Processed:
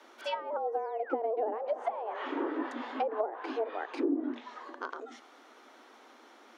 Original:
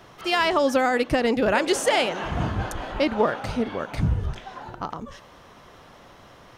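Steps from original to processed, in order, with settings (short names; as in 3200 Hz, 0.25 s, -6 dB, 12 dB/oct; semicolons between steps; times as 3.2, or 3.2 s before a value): painted sound fall, 0.72–1.14, 1000–10000 Hz -29 dBFS; treble ducked by the level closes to 390 Hz, closed at -17 dBFS; frequency shift +220 Hz; gain -7.5 dB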